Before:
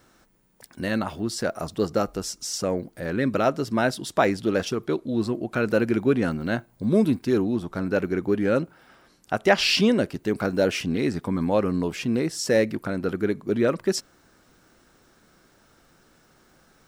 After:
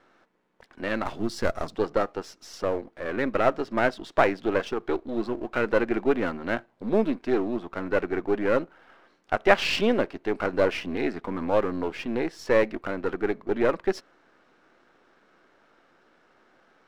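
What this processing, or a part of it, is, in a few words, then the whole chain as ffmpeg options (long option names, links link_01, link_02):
crystal radio: -filter_complex "[0:a]highpass=320,lowpass=2600,aeval=exprs='if(lt(val(0),0),0.447*val(0),val(0))':channel_layout=same,asettb=1/sr,asplit=3[link_01][link_02][link_03];[link_01]atrim=end=1.054[link_04];[link_02]atrim=start=1.05:end=1.76,asetpts=PTS-STARTPTS,afade=type=in:duration=0.004:curve=qsin,afade=type=out:start_time=0.706:duration=0.004:curve=qsin,bass=frequency=250:gain=9,treble=frequency=4000:gain=9[link_05];[link_03]atrim=start=1.756[link_06];[link_04][link_05]acrossfade=duration=0.004:curve1=hsin:curve2=qsin[link_07];[link_07][link_06]acrossfade=duration=0.004:curve1=qsin:curve2=hsin,volume=3dB"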